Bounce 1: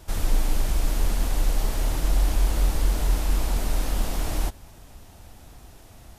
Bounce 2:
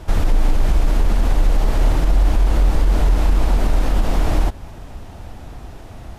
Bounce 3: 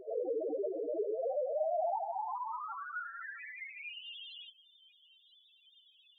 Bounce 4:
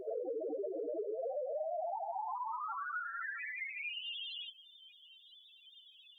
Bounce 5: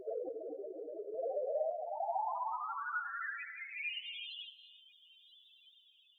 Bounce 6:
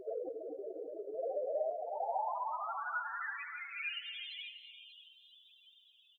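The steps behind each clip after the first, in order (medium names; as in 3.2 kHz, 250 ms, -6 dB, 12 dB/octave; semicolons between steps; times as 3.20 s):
low-pass 1.9 kHz 6 dB/octave; in parallel at -2.5 dB: compression, threshold -27 dBFS, peak gain reduction 12 dB; on the sum: peak limiter -14.5 dBFS, peak gain reduction 5.5 dB; trim +7.5 dB
high-pass sweep 440 Hz -> 3.2 kHz, 1.11–4.29 s; loudest bins only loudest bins 2
compression 5:1, threshold -42 dBFS, peak gain reduction 11.5 dB; trim +5 dB
random-step tremolo 3.5 Hz; gated-style reverb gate 380 ms rising, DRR 10 dB; upward expansion 1.5:1, over -51 dBFS; trim +4.5 dB
delay 589 ms -11 dB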